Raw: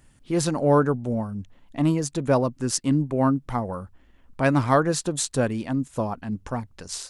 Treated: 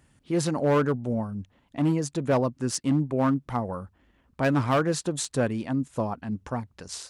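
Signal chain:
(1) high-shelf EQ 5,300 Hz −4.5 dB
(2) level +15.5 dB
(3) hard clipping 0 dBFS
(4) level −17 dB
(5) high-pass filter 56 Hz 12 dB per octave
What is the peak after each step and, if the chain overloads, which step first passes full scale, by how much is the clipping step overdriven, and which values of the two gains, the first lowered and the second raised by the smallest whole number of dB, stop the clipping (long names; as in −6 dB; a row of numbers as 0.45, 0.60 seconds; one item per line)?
−6.5, +9.0, 0.0, −17.0, −14.5 dBFS
step 2, 9.0 dB
step 2 +6.5 dB, step 4 −8 dB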